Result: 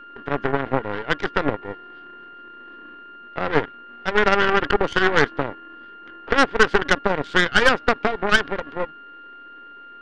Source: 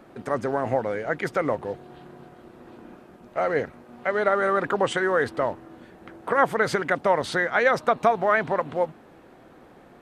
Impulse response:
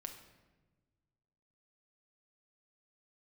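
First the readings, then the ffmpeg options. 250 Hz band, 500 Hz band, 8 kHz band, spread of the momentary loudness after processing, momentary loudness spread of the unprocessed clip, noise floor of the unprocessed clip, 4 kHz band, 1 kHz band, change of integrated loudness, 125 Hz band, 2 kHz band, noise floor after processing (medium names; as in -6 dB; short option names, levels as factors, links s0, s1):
+5.0 dB, +0.5 dB, +5.0 dB, 14 LU, 10 LU, -51 dBFS, +12.5 dB, +2.0 dB, +3.5 dB, +4.5 dB, +6.5 dB, -42 dBFS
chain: -af "highpass=250,equalizer=f=290:t=q:w=4:g=9,equalizer=f=420:t=q:w=4:g=6,equalizer=f=650:t=q:w=4:g=-6,equalizer=f=1000:t=q:w=4:g=-10,equalizer=f=1500:t=q:w=4:g=8,equalizer=f=3200:t=q:w=4:g=4,lowpass=f=3800:w=0.5412,lowpass=f=3800:w=1.3066,aeval=exprs='val(0)+0.0251*sin(2*PI*1400*n/s)':c=same,aeval=exprs='0.531*(cos(1*acos(clip(val(0)/0.531,-1,1)))-cos(1*PI/2))+0.15*(cos(4*acos(clip(val(0)/0.531,-1,1)))-cos(4*PI/2))+0.0119*(cos(5*acos(clip(val(0)/0.531,-1,1)))-cos(5*PI/2))+0.0596*(cos(7*acos(clip(val(0)/0.531,-1,1)))-cos(7*PI/2))':c=same,volume=1.19"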